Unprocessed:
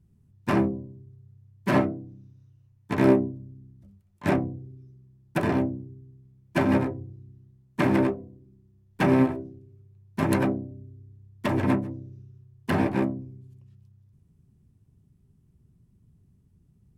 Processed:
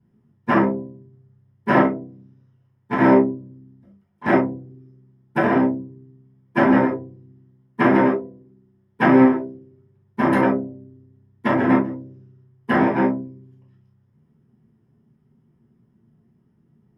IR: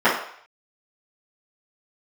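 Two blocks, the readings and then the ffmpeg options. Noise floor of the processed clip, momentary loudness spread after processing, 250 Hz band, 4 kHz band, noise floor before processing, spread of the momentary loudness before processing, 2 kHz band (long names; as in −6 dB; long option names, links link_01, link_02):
−63 dBFS, 17 LU, +6.5 dB, can't be measured, −63 dBFS, 19 LU, +9.0 dB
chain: -filter_complex "[1:a]atrim=start_sample=2205,atrim=end_sample=3528[link_01];[0:a][link_01]afir=irnorm=-1:irlink=0,volume=-14dB"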